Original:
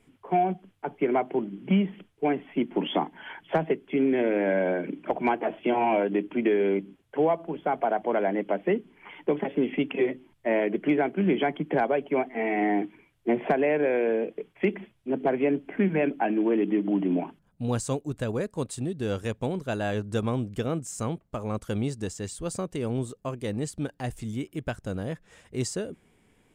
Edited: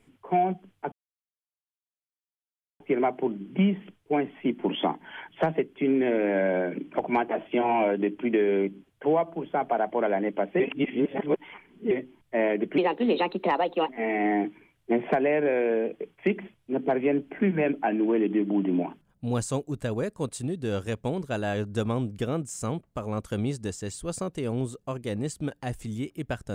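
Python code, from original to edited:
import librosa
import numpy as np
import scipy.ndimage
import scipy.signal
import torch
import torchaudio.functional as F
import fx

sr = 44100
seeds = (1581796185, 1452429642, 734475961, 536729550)

y = fx.edit(x, sr, fx.insert_silence(at_s=0.92, length_s=1.88),
    fx.reverse_span(start_s=8.72, length_s=1.31),
    fx.speed_span(start_s=10.9, length_s=1.36, speed=1.23), tone=tone)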